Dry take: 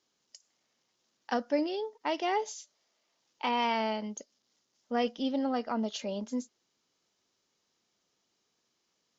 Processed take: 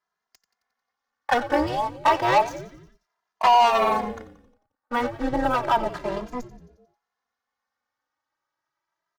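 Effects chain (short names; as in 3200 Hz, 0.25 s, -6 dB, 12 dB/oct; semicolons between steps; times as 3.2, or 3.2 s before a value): 3.7–6.17 median filter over 15 samples; LPF 6100 Hz; band shelf 1200 Hz +15.5 dB; notches 50/100/150/200 Hz; sample leveller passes 3; AM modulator 240 Hz, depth 90%; frequency-shifting echo 89 ms, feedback 58%, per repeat -140 Hz, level -15 dB; endless flanger 2.5 ms +0.31 Hz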